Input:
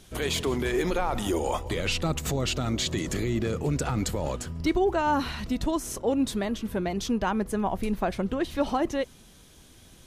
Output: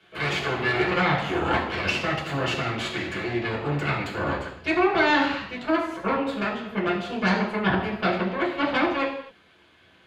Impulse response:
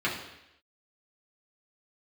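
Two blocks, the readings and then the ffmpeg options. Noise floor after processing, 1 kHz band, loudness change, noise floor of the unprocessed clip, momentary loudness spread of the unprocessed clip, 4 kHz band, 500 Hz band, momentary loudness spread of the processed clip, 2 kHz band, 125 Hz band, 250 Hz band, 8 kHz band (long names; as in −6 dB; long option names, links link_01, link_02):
−57 dBFS, +4.5 dB, +3.0 dB, −53 dBFS, 4 LU, +2.0 dB, +1.5 dB, 7 LU, +10.5 dB, +0.5 dB, +1.0 dB, −11.5 dB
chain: -filter_complex "[0:a]acrossover=split=440 3400:gain=0.178 1 0.178[link_01][link_02][link_03];[link_01][link_02][link_03]amix=inputs=3:normalize=0,aeval=exprs='0.224*(cos(1*acos(clip(val(0)/0.224,-1,1)))-cos(1*PI/2))+0.0631*(cos(8*acos(clip(val(0)/0.224,-1,1)))-cos(8*PI/2))':channel_layout=same[link_04];[1:a]atrim=start_sample=2205,afade=type=out:start_time=0.33:duration=0.01,atrim=end_sample=14994[link_05];[link_04][link_05]afir=irnorm=-1:irlink=0,volume=-5.5dB"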